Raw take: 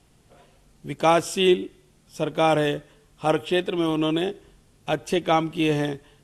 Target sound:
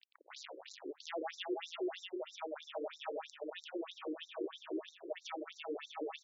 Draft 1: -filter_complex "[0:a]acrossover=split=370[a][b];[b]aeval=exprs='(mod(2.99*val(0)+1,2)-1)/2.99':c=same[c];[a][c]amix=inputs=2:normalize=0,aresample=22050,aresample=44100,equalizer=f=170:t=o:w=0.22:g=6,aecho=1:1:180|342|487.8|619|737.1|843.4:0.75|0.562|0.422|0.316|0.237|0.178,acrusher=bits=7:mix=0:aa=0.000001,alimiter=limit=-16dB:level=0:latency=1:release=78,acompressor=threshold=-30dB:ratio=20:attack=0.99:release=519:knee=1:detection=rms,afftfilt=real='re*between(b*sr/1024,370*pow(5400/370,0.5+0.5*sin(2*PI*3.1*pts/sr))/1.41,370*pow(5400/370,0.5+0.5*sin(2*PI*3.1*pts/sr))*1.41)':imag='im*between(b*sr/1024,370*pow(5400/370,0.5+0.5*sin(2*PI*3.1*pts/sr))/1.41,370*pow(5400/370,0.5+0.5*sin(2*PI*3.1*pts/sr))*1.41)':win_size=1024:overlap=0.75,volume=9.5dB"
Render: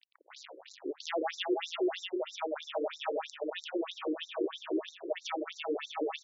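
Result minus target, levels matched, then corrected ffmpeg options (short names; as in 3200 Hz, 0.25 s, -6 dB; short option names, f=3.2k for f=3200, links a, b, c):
compressor: peak gain reduction -7.5 dB
-filter_complex "[0:a]acrossover=split=370[a][b];[b]aeval=exprs='(mod(2.99*val(0)+1,2)-1)/2.99':c=same[c];[a][c]amix=inputs=2:normalize=0,aresample=22050,aresample=44100,equalizer=f=170:t=o:w=0.22:g=6,aecho=1:1:180|342|487.8|619|737.1|843.4:0.75|0.562|0.422|0.316|0.237|0.178,acrusher=bits=7:mix=0:aa=0.000001,alimiter=limit=-16dB:level=0:latency=1:release=78,acompressor=threshold=-38dB:ratio=20:attack=0.99:release=519:knee=1:detection=rms,afftfilt=real='re*between(b*sr/1024,370*pow(5400/370,0.5+0.5*sin(2*PI*3.1*pts/sr))/1.41,370*pow(5400/370,0.5+0.5*sin(2*PI*3.1*pts/sr))*1.41)':imag='im*between(b*sr/1024,370*pow(5400/370,0.5+0.5*sin(2*PI*3.1*pts/sr))/1.41,370*pow(5400/370,0.5+0.5*sin(2*PI*3.1*pts/sr))*1.41)':win_size=1024:overlap=0.75,volume=9.5dB"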